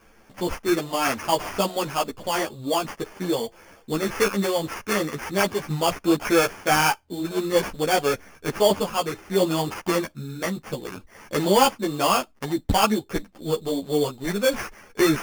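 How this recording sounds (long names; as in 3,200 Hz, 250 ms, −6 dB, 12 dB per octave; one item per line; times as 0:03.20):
aliases and images of a low sample rate 3,900 Hz, jitter 0%
a shimmering, thickened sound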